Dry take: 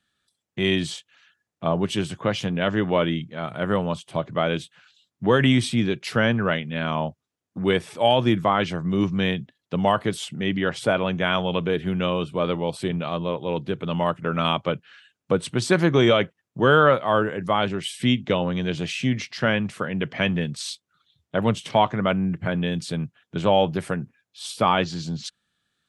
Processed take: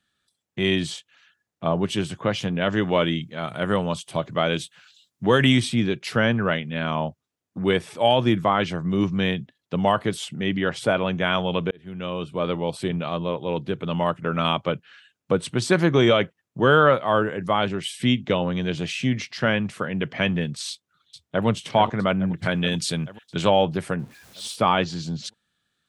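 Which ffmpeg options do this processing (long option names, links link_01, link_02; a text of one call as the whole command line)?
ffmpeg -i in.wav -filter_complex "[0:a]asettb=1/sr,asplit=3[link_01][link_02][link_03];[link_01]atrim=end=2.724[link_04];[link_02]atrim=start=2.72:end=5.6,asetpts=PTS-STARTPTS,afade=type=in:duration=0.004:curve=qsin,afade=type=out:start_time=2.876:duration=0.004:curve=qsin,highshelf=frequency=3800:gain=9[link_05];[link_03]atrim=start=5.596[link_06];[link_04][link_05]acrossfade=duration=0.004:curve1=hsin:curve2=qsin[link_07];[link_07][link_06]acrossfade=duration=0.004:curve1=qsin:curve2=hsin,asplit=2[link_08][link_09];[link_09]afade=type=in:start_time=20.7:duration=0.01,afade=type=out:start_time=21.46:duration=0.01,aecho=0:1:430|860|1290|1720|2150|2580|3010|3440|3870:0.354813|0.230629|0.149909|0.0974406|0.0633364|0.0411687|0.0267596|0.0173938|0.0113059[link_10];[link_08][link_10]amix=inputs=2:normalize=0,asplit=3[link_11][link_12][link_13];[link_11]afade=type=out:start_time=22.37:duration=0.02[link_14];[link_12]highshelf=frequency=2000:gain=10,afade=type=in:start_time=22.37:duration=0.02,afade=type=out:start_time=23.49:duration=0.02[link_15];[link_13]afade=type=in:start_time=23.49:duration=0.02[link_16];[link_14][link_15][link_16]amix=inputs=3:normalize=0,asettb=1/sr,asplit=3[link_17][link_18][link_19];[link_17]atrim=end=23.994[link_20];[link_18]atrim=start=23.99:end=24.56,asetpts=PTS-STARTPTS,afade=type=in:duration=0.004:curve=qsin,afade=type=out:start_time=0.566:duration=0.004:curve=qsin,aeval=exprs='val(0)+0.5*0.00562*sgn(val(0))':channel_layout=same[link_21];[link_19]atrim=start=24.556[link_22];[link_20][link_21]acrossfade=duration=0.004:curve1=hsin:curve2=qsin[link_23];[link_23][link_22]acrossfade=duration=0.004:curve1=qsin:curve2=hsin,asplit=2[link_24][link_25];[link_24]atrim=end=11.71,asetpts=PTS-STARTPTS,afade=type=out:start_time=11.706:duration=0.004:curve=hsin[link_26];[link_25]atrim=start=11.71,asetpts=PTS-STARTPTS,afade=type=in:duration=1.11:curve=qsin[link_27];[link_26][link_27]concat=n=2:v=0:a=1" out.wav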